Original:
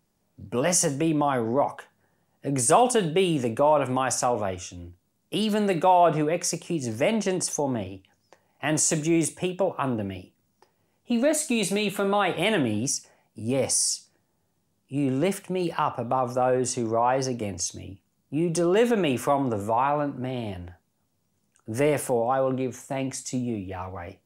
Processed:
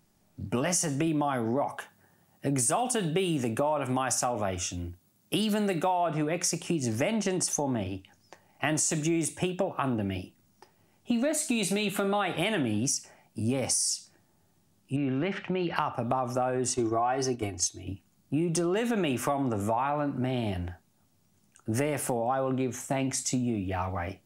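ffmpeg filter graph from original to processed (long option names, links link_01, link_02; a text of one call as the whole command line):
ffmpeg -i in.wav -filter_complex "[0:a]asettb=1/sr,asplit=3[link_01][link_02][link_03];[link_01]atrim=end=1.074[link_04];[link_02]atrim=start=1.07:end=5.91,asetpts=PTS-STARTPTS,afade=type=in:duration=0.004:curve=qsin,afade=type=out:start_time=4.836:duration=0.004:curve=qsin,highpass=46,highshelf=frequency=12000:gain=8.5[link_05];[link_03]atrim=start=5.906[link_06];[link_04][link_05]acrossfade=duration=0.004:curve1=hsin:curve2=qsin[link_07];[link_07][link_06]acrossfade=duration=0.004:curve1=qsin:curve2=hsin,asettb=1/sr,asplit=3[link_08][link_09][link_10];[link_08]atrim=end=14.964[link_11];[link_09]atrim=start=14.96:end=15.76,asetpts=PTS-STARTPTS,afade=type=in:duration=0.004:curve=qsin,afade=type=out:start_time=0.796:duration=0.004:curve=qsin,lowpass=frequency=3900:width=0.5412,lowpass=frequency=3900:width=1.3066,acompressor=threshold=-31dB:ratio=2:attack=3.2:release=140:knee=1:detection=peak,equalizer=frequency=1800:width_type=o:width=1.1:gain=5.5[link_12];[link_10]atrim=start=15.756[link_13];[link_11][link_12]acrossfade=duration=0.004:curve1=hsin:curve2=qsin[link_14];[link_14][link_13]acrossfade=duration=0.004:curve1=qsin:curve2=hsin,asettb=1/sr,asplit=3[link_15][link_16][link_17];[link_15]atrim=end=16.744[link_18];[link_16]atrim=start=16.74:end=17.87,asetpts=PTS-STARTPTS,afade=type=in:duration=0.004:curve=qsin,afade=type=out:start_time=1.126:duration=0.004:curve=qsin,agate=range=-9dB:threshold=-30dB:ratio=16:release=100:detection=peak,aecho=1:1:2.7:0.7,atrim=end_sample=49833[link_19];[link_17]atrim=start=17.866[link_20];[link_18][link_19]acrossfade=duration=0.004:curve1=hsin:curve2=qsin[link_21];[link_21][link_20]acrossfade=duration=0.004:curve1=qsin:curve2=hsin,equalizer=frequency=490:width=5:gain=-8,bandreject=frequency=990:width=15,acompressor=threshold=-30dB:ratio=6,volume=5dB" out.wav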